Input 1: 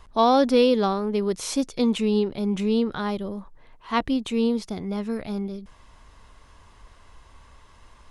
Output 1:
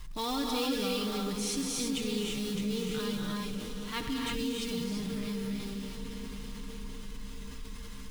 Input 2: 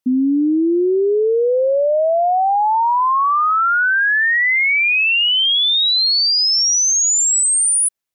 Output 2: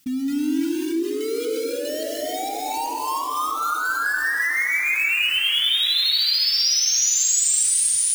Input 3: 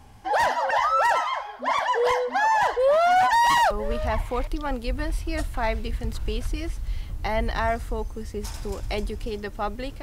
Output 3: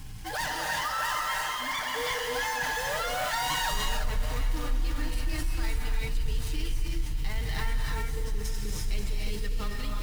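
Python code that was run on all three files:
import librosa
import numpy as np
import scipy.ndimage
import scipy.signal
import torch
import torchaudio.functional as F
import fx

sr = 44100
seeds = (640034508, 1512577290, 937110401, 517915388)

p1 = x + 0.67 * np.pad(x, (int(6.6 * sr / 1000.0), 0))[:len(x)]
p2 = fx.quant_companded(p1, sr, bits=4)
p3 = p1 + F.gain(torch.from_numpy(p2), -5.0).numpy()
p4 = fx.tone_stack(p3, sr, knobs='6-0-2')
p5 = p4 + fx.echo_diffused(p4, sr, ms=566, feedback_pct=66, wet_db=-14.5, dry=0)
p6 = fx.rev_gated(p5, sr, seeds[0], gate_ms=370, shape='rising', drr_db=-1.0)
y = fx.env_flatten(p6, sr, amount_pct=50)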